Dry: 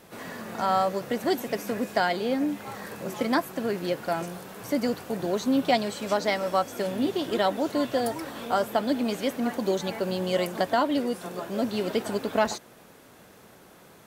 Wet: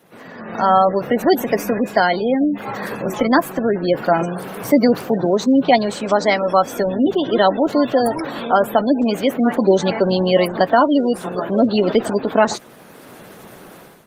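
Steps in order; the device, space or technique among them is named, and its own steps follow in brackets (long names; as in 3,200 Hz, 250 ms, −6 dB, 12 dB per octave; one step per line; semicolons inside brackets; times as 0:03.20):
noise-suppressed video call (high-pass filter 110 Hz 24 dB per octave; gate on every frequency bin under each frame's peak −25 dB strong; automatic gain control gain up to 14.5 dB; Opus 24 kbit/s 48,000 Hz)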